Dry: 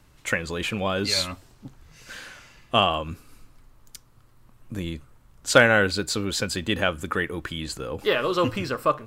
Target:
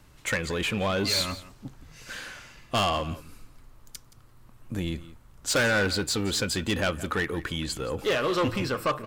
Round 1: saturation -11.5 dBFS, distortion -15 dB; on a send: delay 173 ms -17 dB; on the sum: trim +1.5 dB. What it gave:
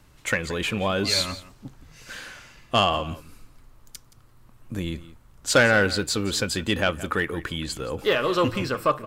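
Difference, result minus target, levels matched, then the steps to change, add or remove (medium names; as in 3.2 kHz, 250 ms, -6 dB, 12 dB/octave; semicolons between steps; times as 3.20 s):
saturation: distortion -8 dB
change: saturation -21.5 dBFS, distortion -6 dB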